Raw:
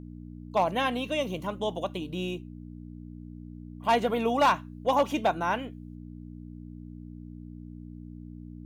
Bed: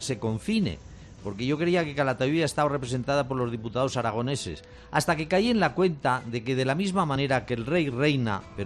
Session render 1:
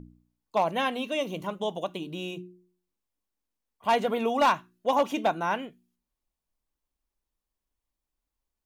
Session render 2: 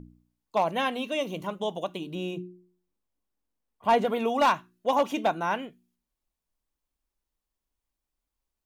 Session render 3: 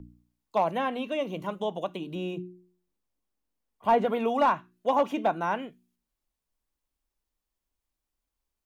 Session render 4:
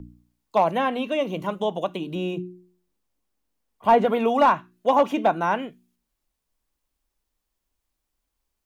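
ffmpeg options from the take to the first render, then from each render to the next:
-af "bandreject=f=60:t=h:w=4,bandreject=f=120:t=h:w=4,bandreject=f=180:t=h:w=4,bandreject=f=240:t=h:w=4,bandreject=f=300:t=h:w=4,bandreject=f=360:t=h:w=4"
-filter_complex "[0:a]asettb=1/sr,asplit=3[s0][s1][s2];[s0]atrim=end=2.154[s3];[s1]atrim=start=2.15:end=4.05,asetpts=PTS-STARTPTS,afade=t=in:d=0.004:c=qsin,afade=t=out:st=1.896:d=0.004:c=qsin,tiltshelf=f=1400:g=4[s4];[s2]atrim=start=4.046[s5];[s3][s4]acrossfade=d=0.004:c1=hsin:c2=qsin[s6];[s6][s5]acrossfade=d=0.004:c1=qsin:c2=hsin"
-filter_complex "[0:a]acrossover=split=140|1500|2900[s0][s1][s2][s3];[s2]alimiter=level_in=3.16:limit=0.0631:level=0:latency=1,volume=0.316[s4];[s3]acompressor=threshold=0.002:ratio=4[s5];[s0][s1][s4][s5]amix=inputs=4:normalize=0"
-af "volume=1.88"

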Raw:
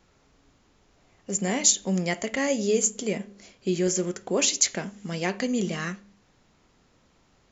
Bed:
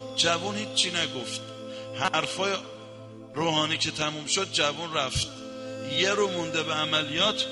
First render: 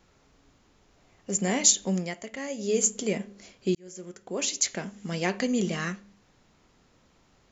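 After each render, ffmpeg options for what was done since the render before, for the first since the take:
-filter_complex "[0:a]asplit=4[s0][s1][s2][s3];[s0]atrim=end=2.14,asetpts=PTS-STARTPTS,afade=t=out:st=1.86:d=0.28:silence=0.334965[s4];[s1]atrim=start=2.14:end=2.56,asetpts=PTS-STARTPTS,volume=0.335[s5];[s2]atrim=start=2.56:end=3.75,asetpts=PTS-STARTPTS,afade=t=in:d=0.28:silence=0.334965,afade=t=out:st=1.186:d=0.004:c=hsin[s6];[s3]atrim=start=3.75,asetpts=PTS-STARTPTS,afade=t=in:d=1.39[s7];[s4][s5][s6][s7]concat=n=4:v=0:a=1"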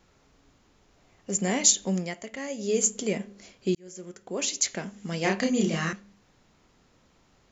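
-filter_complex "[0:a]asettb=1/sr,asplit=3[s0][s1][s2];[s0]atrim=end=5.214[s3];[s1]atrim=start=5.21:end=5.93,asetpts=PTS-STARTPTS,afade=t=in:d=0.004:c=qsin,afade=t=out:st=0.716:d=0.004:c=qsin,asplit=2[s4][s5];[s5]adelay=31,volume=0.794[s6];[s4][s6]amix=inputs=2:normalize=0,atrim=end_sample=31752[s7];[s2]atrim=start=5.926[s8];[s3][s7]acrossfade=d=0.004:c1=hsin:c2=qsin[s9];[s9][s8]acrossfade=d=0.004:c1=qsin:c2=hsin"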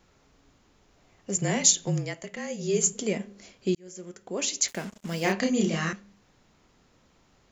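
-filter_complex "[0:a]asettb=1/sr,asplit=3[s0][s1][s2];[s0]atrim=end=1.364[s3];[s1]atrim=start=1.36:end=2.93,asetpts=PTS-STARTPTS,afade=t=in:d=0.004:c=qsin,afade=t=out:st=1.566:d=0.004:c=qsin,afreqshift=-33[s4];[s2]atrim=start=2.926[s5];[s3][s4]acrossfade=d=0.004:c1=hsin:c2=qsin[s6];[s6][s5]acrossfade=d=0.004:c1=qsin:c2=hsin,asettb=1/sr,asplit=3[s7][s8][s9];[s7]atrim=end=4.684[s10];[s8]atrim=start=4.68:end=5.32,asetpts=PTS-STARTPTS,afade=t=in:d=0.004:c=qsin,afade=t=out:st=0.636:d=0.004:c=qsin,acrusher=bits=6:mix=0:aa=0.5[s11];[s9]atrim=start=5.316[s12];[s10][s11]acrossfade=d=0.004:c1=hsin:c2=qsin[s13];[s13][s12]acrossfade=d=0.004:c1=qsin:c2=hsin"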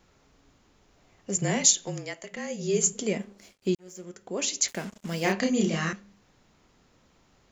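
-filter_complex "[0:a]asettb=1/sr,asplit=3[s0][s1][s2];[s0]atrim=end=1.654[s3];[s1]atrim=start=1.65:end=2.31,asetpts=PTS-STARTPTS,afade=t=in:d=0.004:c=qsin,afade=t=out:st=0.656:d=0.004:c=qsin,equalizer=f=84:w=0.52:g=-14.5[s4];[s2]atrim=start=2.306[s5];[s3][s4]acrossfade=d=0.004:c1=hsin:c2=qsin[s6];[s6][s5]acrossfade=d=0.004:c1=qsin:c2=hsin,asettb=1/sr,asplit=3[s7][s8][s9];[s7]atrim=end=3.194[s10];[s8]atrim=start=3.19:end=4.04,asetpts=PTS-STARTPTS,afade=t=in:d=0.004:c=qsin,afade=t=out:st=0.846:d=0.004:c=qsin,aeval=exprs='sgn(val(0))*max(abs(val(0))-0.00141,0)':c=same[s11];[s9]atrim=start=4.036[s12];[s10][s11]acrossfade=d=0.004:c1=hsin:c2=qsin[s13];[s13][s12]acrossfade=d=0.004:c1=qsin:c2=hsin"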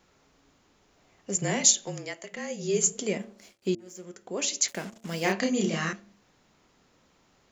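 -af "lowshelf=f=110:g=-8.5,bandreject=f=113.4:t=h:w=4,bandreject=f=226.8:t=h:w=4,bandreject=f=340.2:t=h:w=4,bandreject=f=453.6:t=h:w=4,bandreject=f=567:t=h:w=4,bandreject=f=680.4:t=h:w=4,bandreject=f=793.8:t=h:w=4"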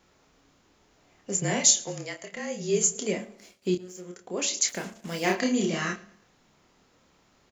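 -filter_complex "[0:a]asplit=2[s0][s1];[s1]adelay=28,volume=0.501[s2];[s0][s2]amix=inputs=2:normalize=0,aecho=1:1:110|220|330:0.0794|0.0294|0.0109"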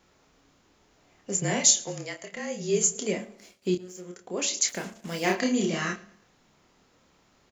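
-af anull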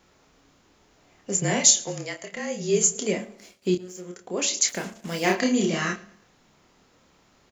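-af "volume=1.41,alimiter=limit=0.708:level=0:latency=1"

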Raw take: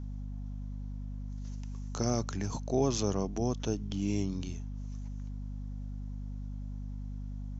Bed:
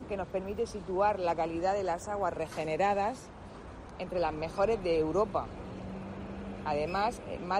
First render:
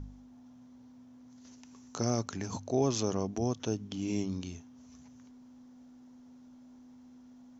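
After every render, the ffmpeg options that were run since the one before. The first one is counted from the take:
-af "bandreject=f=50:t=h:w=4,bandreject=f=100:t=h:w=4,bandreject=f=150:t=h:w=4,bandreject=f=200:t=h:w=4"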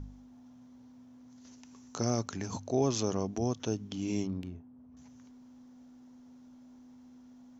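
-filter_complex "[0:a]asettb=1/sr,asplit=3[s0][s1][s2];[s0]atrim=end=4.274[s3];[s1]atrim=start=4.27:end=4.97,asetpts=PTS-STARTPTS,afade=t=in:d=0.004:c=qsin,afade=t=out:st=0.696:d=0.004:c=qsin,adynamicsmooth=sensitivity=5.5:basefreq=880[s4];[s2]atrim=start=4.966[s5];[s3][s4]acrossfade=d=0.004:c1=hsin:c2=qsin[s6];[s6][s5]acrossfade=d=0.004:c1=qsin:c2=hsin"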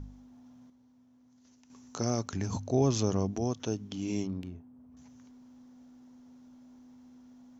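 -filter_complex "[0:a]asettb=1/sr,asplit=3[s0][s1][s2];[s0]atrim=end=2.334[s3];[s1]atrim=start=2.33:end=3.37,asetpts=PTS-STARTPTS,afade=t=in:d=0.004:c=qsin,afade=t=out:st=1.036:d=0.004:c=qsin,lowshelf=f=140:g=11.5[s4];[s2]atrim=start=3.366[s5];[s3][s4]acrossfade=d=0.004:c1=hsin:c2=qsin[s6];[s6][s5]acrossfade=d=0.004:c1=qsin:c2=hsin,asplit=3[s7][s8][s9];[s7]atrim=end=0.702[s10];[s8]atrim=start=0.698:end=1.702,asetpts=PTS-STARTPTS,volume=0.398[s11];[s9]atrim=start=1.698[s12];[s10][s11]acrossfade=d=0.004:c1=hsin:c2=hsin[s13];[s13][s12]acrossfade=d=0.004:c1=hsin:c2=hsin"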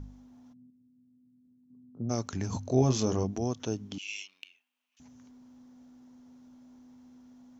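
-filter_complex "[0:a]asplit=3[s0][s1][s2];[s0]afade=t=out:st=0.52:d=0.02[s3];[s1]asuperpass=centerf=170:order=4:qfactor=0.97,afade=t=in:st=0.52:d=0.02,afade=t=out:st=2.09:d=0.02[s4];[s2]afade=t=in:st=2.09:d=0.02[s5];[s3][s4][s5]amix=inputs=3:normalize=0,asettb=1/sr,asplit=3[s6][s7][s8];[s6]atrim=end=2.634[s9];[s7]atrim=start=2.63:end=3.24,asetpts=PTS-STARTPTS,afade=t=in:d=0.004:c=qsin,afade=t=out:st=0.606:d=0.004:c=qsin,asplit=2[s10][s11];[s11]adelay=23,volume=0.501[s12];[s10][s12]amix=inputs=2:normalize=0,atrim=end_sample=26901[s13];[s8]atrim=start=3.236[s14];[s9][s13]acrossfade=d=0.004:c1=hsin:c2=qsin[s15];[s15][s14]acrossfade=d=0.004:c1=qsin:c2=hsin,asettb=1/sr,asplit=3[s16][s17][s18];[s16]atrim=end=3.984[s19];[s17]atrim=start=3.98:end=5,asetpts=PTS-STARTPTS,afade=t=in:d=0.004:c=qsin,afade=t=out:st=1.016:d=0.004:c=qsin,highpass=f=2700:t=q:w=5.2[s20];[s18]atrim=start=4.996[s21];[s19][s20]acrossfade=d=0.004:c1=hsin:c2=qsin[s22];[s22][s21]acrossfade=d=0.004:c1=qsin:c2=hsin"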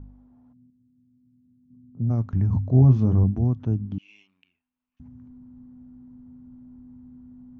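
-af "lowpass=1200,asubboost=boost=11:cutoff=160"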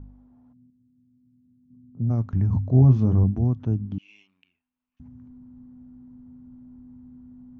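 -af anull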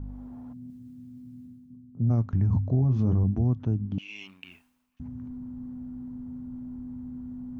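-af "alimiter=limit=0.15:level=0:latency=1:release=102,areverse,acompressor=mode=upward:threshold=0.0316:ratio=2.5,areverse"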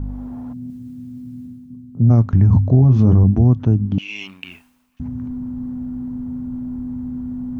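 -af "volume=3.76"

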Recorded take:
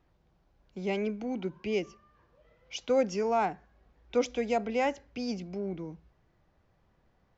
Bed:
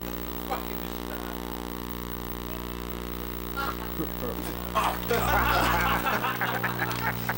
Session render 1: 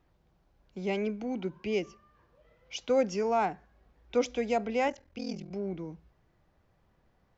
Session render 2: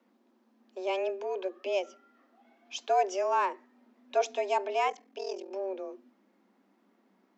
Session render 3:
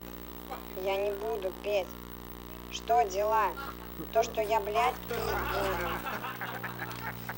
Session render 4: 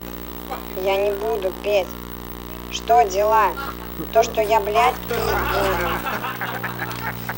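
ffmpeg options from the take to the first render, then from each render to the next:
-filter_complex "[0:a]asettb=1/sr,asplit=3[s0][s1][s2];[s0]atrim=end=4.884[s3];[s1]atrim=start=4.88:end=5.51,asetpts=PTS-STARTPTS,afade=t=in:d=0.004:c=qsin,afade=t=out:st=0.626:d=0.004:c=qsin,aeval=exprs='val(0)*sin(2*PI*21*n/s)':c=same[s4];[s2]atrim=start=5.506[s5];[s3][s4]acrossfade=d=0.004:c1=hsin:c2=qsin[s6];[s6][s5]acrossfade=d=0.004:c1=qsin:c2=hsin"
-af "afreqshift=190"
-filter_complex "[1:a]volume=0.335[s0];[0:a][s0]amix=inputs=2:normalize=0"
-af "volume=3.55"

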